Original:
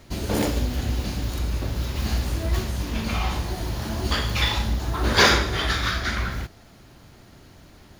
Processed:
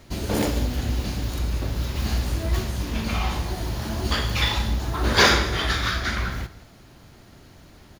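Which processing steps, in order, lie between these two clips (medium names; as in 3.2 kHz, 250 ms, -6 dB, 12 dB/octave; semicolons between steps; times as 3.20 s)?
delay 191 ms -18 dB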